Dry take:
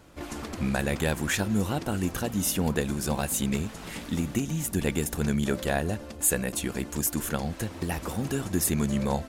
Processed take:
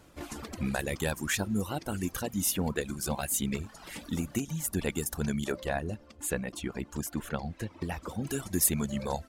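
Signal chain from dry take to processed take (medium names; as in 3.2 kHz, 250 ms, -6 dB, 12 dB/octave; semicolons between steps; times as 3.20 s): reverb removal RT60 1.2 s; peaking EQ 14 kHz +3 dB 1.7 oct, from 5.52 s -10.5 dB, from 8.27 s +6 dB; trim -3 dB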